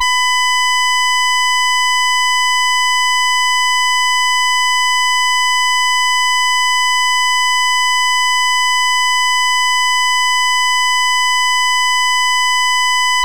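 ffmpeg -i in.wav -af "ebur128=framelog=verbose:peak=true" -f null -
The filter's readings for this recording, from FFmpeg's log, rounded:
Integrated loudness:
  I:         -11.9 LUFS
  Threshold: -21.9 LUFS
Loudness range:
  LRA:         0.0 LU
  Threshold: -31.9 LUFS
  LRA low:   -11.9 LUFS
  LRA high:  -11.9 LUFS
True peak:
  Peak:       -6.6 dBFS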